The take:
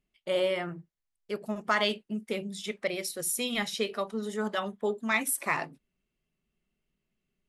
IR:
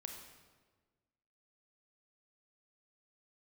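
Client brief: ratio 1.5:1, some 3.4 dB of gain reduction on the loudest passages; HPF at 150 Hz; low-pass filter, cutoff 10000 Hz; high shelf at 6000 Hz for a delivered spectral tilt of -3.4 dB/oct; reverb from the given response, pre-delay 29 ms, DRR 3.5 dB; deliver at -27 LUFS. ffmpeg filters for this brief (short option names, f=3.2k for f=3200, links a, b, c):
-filter_complex "[0:a]highpass=150,lowpass=10k,highshelf=f=6k:g=-5.5,acompressor=threshold=-32dB:ratio=1.5,asplit=2[a][b];[1:a]atrim=start_sample=2205,adelay=29[c];[b][c]afir=irnorm=-1:irlink=0,volume=0dB[d];[a][d]amix=inputs=2:normalize=0,volume=5.5dB"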